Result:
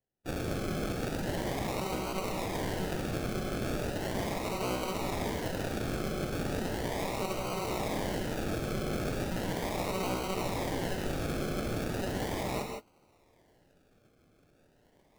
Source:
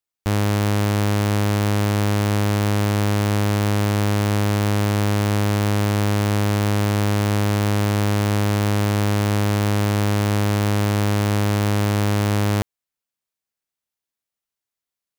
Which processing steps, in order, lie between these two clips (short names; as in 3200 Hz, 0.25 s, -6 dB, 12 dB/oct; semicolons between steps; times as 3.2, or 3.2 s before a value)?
inverse Chebyshev high-pass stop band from 360 Hz, stop band 80 dB; formant-preserving pitch shift +10.5 st; reverse; upward compressor, threshold -46 dBFS; reverse; decimation with a swept rate 36×, swing 60% 0.37 Hz; non-linear reverb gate 0.19 s rising, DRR 3 dB